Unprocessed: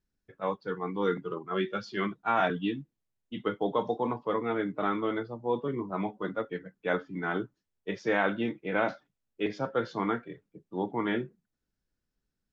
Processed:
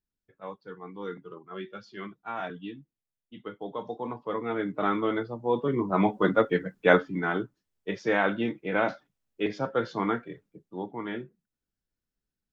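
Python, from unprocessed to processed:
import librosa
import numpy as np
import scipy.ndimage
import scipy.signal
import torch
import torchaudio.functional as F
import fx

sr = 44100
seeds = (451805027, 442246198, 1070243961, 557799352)

y = fx.gain(x, sr, db=fx.line((3.58, -8.5), (4.89, 3.0), (5.5, 3.0), (6.16, 10.5), (6.88, 10.5), (7.36, 2.0), (10.45, 2.0), (10.91, -5.0)))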